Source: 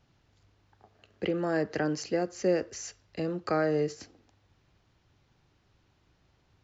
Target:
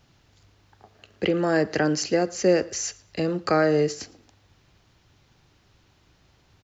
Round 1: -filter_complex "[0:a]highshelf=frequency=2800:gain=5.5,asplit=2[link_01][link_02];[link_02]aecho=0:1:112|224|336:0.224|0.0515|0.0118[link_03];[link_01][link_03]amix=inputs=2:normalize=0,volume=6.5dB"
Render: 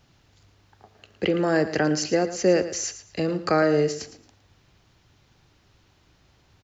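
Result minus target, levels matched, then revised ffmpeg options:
echo-to-direct +11.5 dB
-filter_complex "[0:a]highshelf=frequency=2800:gain=5.5,asplit=2[link_01][link_02];[link_02]aecho=0:1:112|224:0.0596|0.0137[link_03];[link_01][link_03]amix=inputs=2:normalize=0,volume=6.5dB"

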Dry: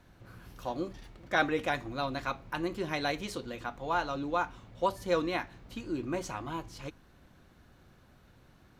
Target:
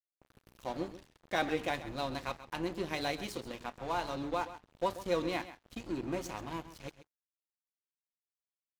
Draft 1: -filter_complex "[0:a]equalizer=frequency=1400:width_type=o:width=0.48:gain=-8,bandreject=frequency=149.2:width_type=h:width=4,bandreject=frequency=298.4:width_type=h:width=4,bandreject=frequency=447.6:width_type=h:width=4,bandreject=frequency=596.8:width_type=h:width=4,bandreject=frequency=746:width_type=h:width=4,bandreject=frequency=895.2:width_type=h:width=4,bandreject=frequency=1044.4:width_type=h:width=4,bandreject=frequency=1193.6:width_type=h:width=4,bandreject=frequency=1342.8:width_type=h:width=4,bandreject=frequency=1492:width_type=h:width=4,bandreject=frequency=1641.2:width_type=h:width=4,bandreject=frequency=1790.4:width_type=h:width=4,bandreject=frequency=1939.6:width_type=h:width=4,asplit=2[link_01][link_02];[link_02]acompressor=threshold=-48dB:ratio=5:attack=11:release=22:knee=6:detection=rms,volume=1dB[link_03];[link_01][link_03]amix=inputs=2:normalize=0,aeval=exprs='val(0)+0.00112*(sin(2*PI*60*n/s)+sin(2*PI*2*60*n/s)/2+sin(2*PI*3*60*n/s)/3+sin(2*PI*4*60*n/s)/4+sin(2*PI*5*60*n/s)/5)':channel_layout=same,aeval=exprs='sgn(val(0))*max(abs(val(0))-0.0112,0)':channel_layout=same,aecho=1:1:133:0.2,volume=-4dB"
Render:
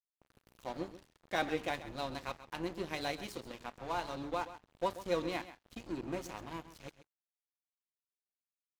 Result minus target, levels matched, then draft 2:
downward compressor: peak gain reduction +8 dB
-filter_complex "[0:a]equalizer=frequency=1400:width_type=o:width=0.48:gain=-8,bandreject=frequency=149.2:width_type=h:width=4,bandreject=frequency=298.4:width_type=h:width=4,bandreject=frequency=447.6:width_type=h:width=4,bandreject=frequency=596.8:width_type=h:width=4,bandreject=frequency=746:width_type=h:width=4,bandreject=frequency=895.2:width_type=h:width=4,bandreject=frequency=1044.4:width_type=h:width=4,bandreject=frequency=1193.6:width_type=h:width=4,bandreject=frequency=1342.8:width_type=h:width=4,bandreject=frequency=1492:width_type=h:width=4,bandreject=frequency=1641.2:width_type=h:width=4,bandreject=frequency=1790.4:width_type=h:width=4,bandreject=frequency=1939.6:width_type=h:width=4,asplit=2[link_01][link_02];[link_02]acompressor=threshold=-38dB:ratio=5:attack=11:release=22:knee=6:detection=rms,volume=1dB[link_03];[link_01][link_03]amix=inputs=2:normalize=0,aeval=exprs='val(0)+0.00112*(sin(2*PI*60*n/s)+sin(2*PI*2*60*n/s)/2+sin(2*PI*3*60*n/s)/3+sin(2*PI*4*60*n/s)/4+sin(2*PI*5*60*n/s)/5)':channel_layout=same,aeval=exprs='sgn(val(0))*max(abs(val(0))-0.0112,0)':channel_layout=same,aecho=1:1:133:0.2,volume=-4dB"

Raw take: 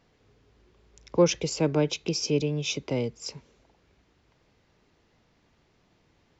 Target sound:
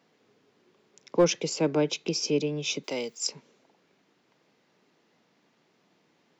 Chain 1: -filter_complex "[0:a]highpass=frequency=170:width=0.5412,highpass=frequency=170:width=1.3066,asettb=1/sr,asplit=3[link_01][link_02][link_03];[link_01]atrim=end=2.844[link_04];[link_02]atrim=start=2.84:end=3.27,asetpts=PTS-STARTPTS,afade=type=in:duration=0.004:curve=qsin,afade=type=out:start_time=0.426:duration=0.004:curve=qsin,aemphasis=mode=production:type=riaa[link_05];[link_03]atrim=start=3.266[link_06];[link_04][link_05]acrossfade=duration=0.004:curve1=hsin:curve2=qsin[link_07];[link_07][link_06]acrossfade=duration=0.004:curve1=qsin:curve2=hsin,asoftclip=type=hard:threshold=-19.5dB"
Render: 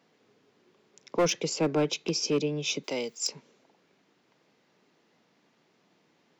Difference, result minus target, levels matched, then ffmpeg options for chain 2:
hard clipping: distortion +11 dB
-filter_complex "[0:a]highpass=frequency=170:width=0.5412,highpass=frequency=170:width=1.3066,asettb=1/sr,asplit=3[link_01][link_02][link_03];[link_01]atrim=end=2.844[link_04];[link_02]atrim=start=2.84:end=3.27,asetpts=PTS-STARTPTS,afade=type=in:duration=0.004:curve=qsin,afade=type=out:start_time=0.426:duration=0.004:curve=qsin,aemphasis=mode=production:type=riaa[link_05];[link_03]atrim=start=3.266[link_06];[link_04][link_05]acrossfade=duration=0.004:curve1=hsin:curve2=qsin[link_07];[link_07][link_06]acrossfade=duration=0.004:curve1=qsin:curve2=hsin,asoftclip=type=hard:threshold=-12.5dB"

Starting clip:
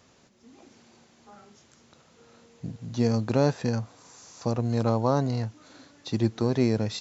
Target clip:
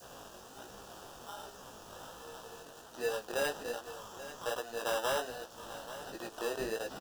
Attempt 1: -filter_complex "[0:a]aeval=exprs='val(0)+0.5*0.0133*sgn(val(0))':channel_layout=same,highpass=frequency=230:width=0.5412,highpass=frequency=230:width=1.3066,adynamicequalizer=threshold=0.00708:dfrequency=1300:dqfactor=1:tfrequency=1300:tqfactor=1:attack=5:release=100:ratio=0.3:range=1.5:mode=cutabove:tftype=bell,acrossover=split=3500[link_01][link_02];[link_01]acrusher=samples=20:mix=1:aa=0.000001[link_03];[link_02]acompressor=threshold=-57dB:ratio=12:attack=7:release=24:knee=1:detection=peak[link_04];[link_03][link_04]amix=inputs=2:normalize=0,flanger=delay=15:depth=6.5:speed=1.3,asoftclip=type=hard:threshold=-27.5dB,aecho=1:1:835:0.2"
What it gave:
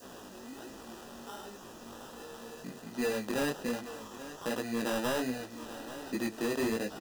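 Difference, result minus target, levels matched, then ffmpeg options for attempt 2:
250 Hz band +11.0 dB
-filter_complex "[0:a]aeval=exprs='val(0)+0.5*0.0133*sgn(val(0))':channel_layout=same,highpass=frequency=480:width=0.5412,highpass=frequency=480:width=1.3066,adynamicequalizer=threshold=0.00708:dfrequency=1300:dqfactor=1:tfrequency=1300:tqfactor=1:attack=5:release=100:ratio=0.3:range=1.5:mode=cutabove:tftype=bell,acrossover=split=3500[link_01][link_02];[link_01]acrusher=samples=20:mix=1:aa=0.000001[link_03];[link_02]acompressor=threshold=-57dB:ratio=12:attack=7:release=24:knee=1:detection=peak[link_04];[link_03][link_04]amix=inputs=2:normalize=0,flanger=delay=15:depth=6.5:speed=1.3,asoftclip=type=hard:threshold=-27.5dB,aecho=1:1:835:0.2"

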